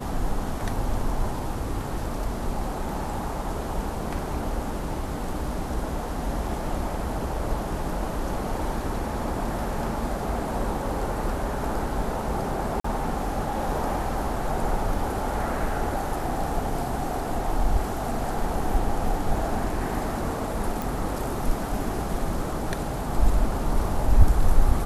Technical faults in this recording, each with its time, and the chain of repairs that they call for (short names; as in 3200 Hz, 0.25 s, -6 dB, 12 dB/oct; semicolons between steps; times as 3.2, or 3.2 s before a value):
12.8–12.84 gap 44 ms
20.82 pop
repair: de-click; interpolate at 12.8, 44 ms